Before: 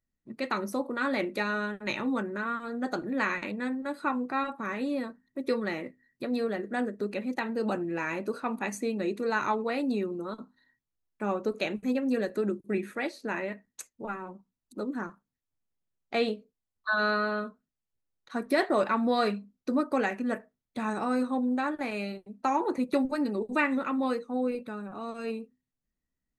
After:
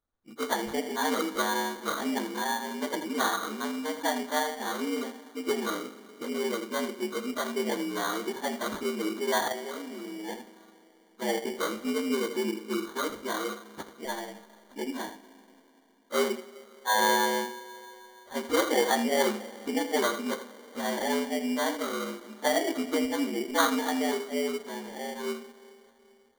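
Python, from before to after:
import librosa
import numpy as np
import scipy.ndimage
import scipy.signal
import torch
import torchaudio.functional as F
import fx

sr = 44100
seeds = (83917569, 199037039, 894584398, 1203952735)

p1 = fx.partial_stretch(x, sr, pct=76)
p2 = p1 + fx.echo_single(p1, sr, ms=81, db=-11.5, dry=0)
p3 = fx.level_steps(p2, sr, step_db=13, at=(9.48, 10.29))
p4 = fx.peak_eq(p3, sr, hz=170.0, db=-8.0, octaves=1.4)
p5 = fx.rev_schroeder(p4, sr, rt60_s=3.5, comb_ms=33, drr_db=15.0)
p6 = fx.sample_hold(p5, sr, seeds[0], rate_hz=2600.0, jitter_pct=0)
y = p6 * librosa.db_to_amplitude(3.5)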